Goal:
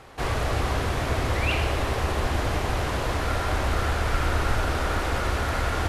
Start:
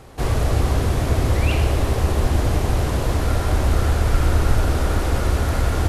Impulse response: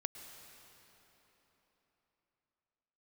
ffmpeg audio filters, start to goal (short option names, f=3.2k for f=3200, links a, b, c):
-af "equalizer=f=1.8k:w=0.32:g=10.5,volume=-8.5dB"